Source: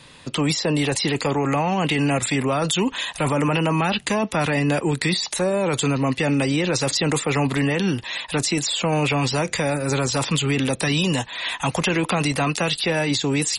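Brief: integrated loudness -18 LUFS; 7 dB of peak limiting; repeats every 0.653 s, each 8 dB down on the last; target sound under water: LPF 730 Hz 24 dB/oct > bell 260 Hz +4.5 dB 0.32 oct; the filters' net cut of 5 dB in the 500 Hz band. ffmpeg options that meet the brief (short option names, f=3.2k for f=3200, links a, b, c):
-af "equalizer=f=500:t=o:g=-6,alimiter=limit=-17.5dB:level=0:latency=1,lowpass=f=730:w=0.5412,lowpass=f=730:w=1.3066,equalizer=f=260:t=o:w=0.32:g=4.5,aecho=1:1:653|1306|1959|2612|3265:0.398|0.159|0.0637|0.0255|0.0102,volume=9dB"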